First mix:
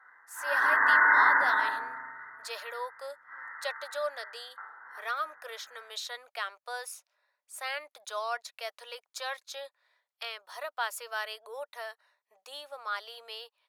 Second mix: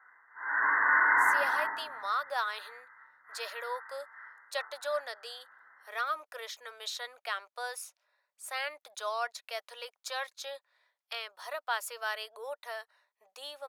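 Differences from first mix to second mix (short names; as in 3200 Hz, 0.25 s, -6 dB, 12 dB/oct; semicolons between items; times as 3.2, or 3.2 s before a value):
speech: entry +0.90 s; background: send -6.0 dB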